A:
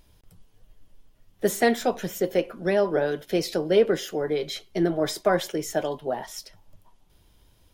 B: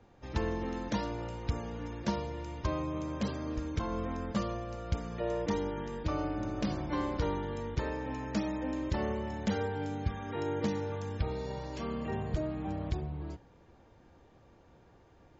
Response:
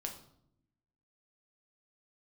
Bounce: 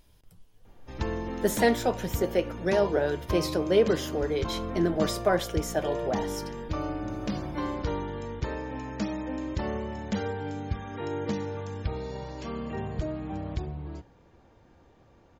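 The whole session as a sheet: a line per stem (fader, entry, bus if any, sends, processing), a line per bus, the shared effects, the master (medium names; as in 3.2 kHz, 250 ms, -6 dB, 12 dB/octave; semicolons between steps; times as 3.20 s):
-3.5 dB, 0.00 s, send -14 dB, none
+1.5 dB, 0.65 s, no send, none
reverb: on, RT60 0.70 s, pre-delay 6 ms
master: none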